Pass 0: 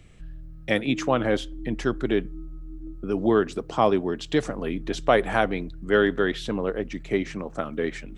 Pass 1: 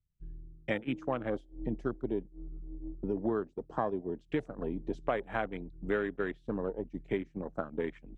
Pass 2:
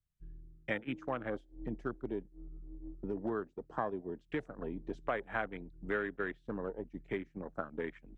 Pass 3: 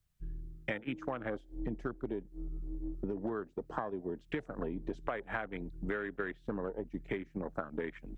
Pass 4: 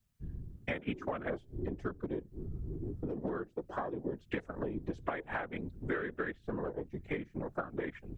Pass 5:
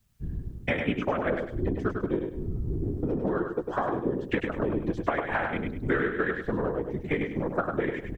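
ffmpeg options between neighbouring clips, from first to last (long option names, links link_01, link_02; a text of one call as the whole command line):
ffmpeg -i in.wav -af "acompressor=threshold=-32dB:ratio=5,afwtdn=0.00891,agate=range=-33dB:threshold=-31dB:ratio=3:detection=peak,volume=3dB" out.wav
ffmpeg -i in.wav -filter_complex "[0:a]equalizer=frequency=1600:width_type=o:width=1.2:gain=6,acrossover=split=620[link_01][link_02];[link_01]volume=24dB,asoftclip=hard,volume=-24dB[link_03];[link_03][link_02]amix=inputs=2:normalize=0,volume=-5dB" out.wav
ffmpeg -i in.wav -af "acompressor=threshold=-42dB:ratio=6,volume=8.5dB" out.wav
ffmpeg -i in.wav -af "afftfilt=real='hypot(re,im)*cos(2*PI*random(0))':imag='hypot(re,im)*sin(2*PI*random(1))':win_size=512:overlap=0.75,volume=6.5dB" out.wav
ffmpeg -i in.wav -af "aecho=1:1:101|202|303|404:0.562|0.169|0.0506|0.0152,volume=8.5dB" out.wav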